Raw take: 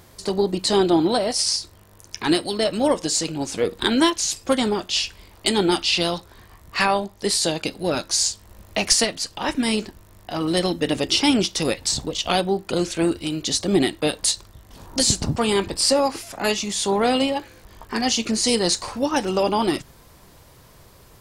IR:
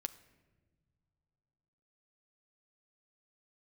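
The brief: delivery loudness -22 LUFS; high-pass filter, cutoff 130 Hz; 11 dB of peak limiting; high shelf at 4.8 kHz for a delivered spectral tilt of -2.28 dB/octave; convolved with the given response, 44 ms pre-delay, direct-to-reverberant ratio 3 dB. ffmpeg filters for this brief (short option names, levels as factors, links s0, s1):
-filter_complex "[0:a]highpass=130,highshelf=f=4800:g=9,alimiter=limit=0.335:level=0:latency=1,asplit=2[s0][s1];[1:a]atrim=start_sample=2205,adelay=44[s2];[s1][s2]afir=irnorm=-1:irlink=0,volume=0.891[s3];[s0][s3]amix=inputs=2:normalize=0,volume=0.75"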